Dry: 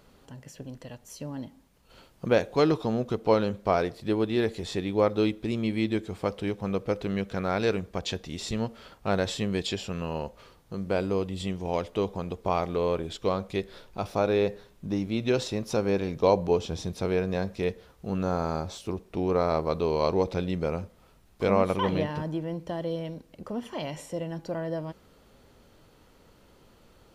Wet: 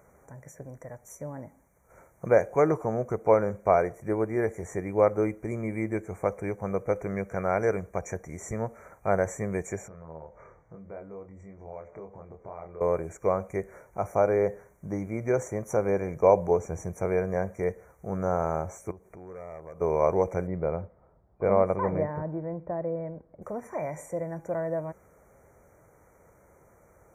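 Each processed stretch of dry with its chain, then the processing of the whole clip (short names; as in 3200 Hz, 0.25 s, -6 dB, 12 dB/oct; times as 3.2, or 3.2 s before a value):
9.88–12.81 compressor 3:1, threshold -45 dBFS + air absorption 170 m + doubler 25 ms -4.5 dB
18.91–19.81 overloaded stage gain 21 dB + compressor 3:1, threshold -46 dBFS
20.47–23.42 LPF 1200 Hz 6 dB/oct + low-pass opened by the level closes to 940 Hz, open at -21 dBFS
whole clip: HPF 50 Hz; FFT band-reject 2400–5700 Hz; fifteen-band EQ 250 Hz -8 dB, 630 Hz +5 dB, 4000 Hz -4 dB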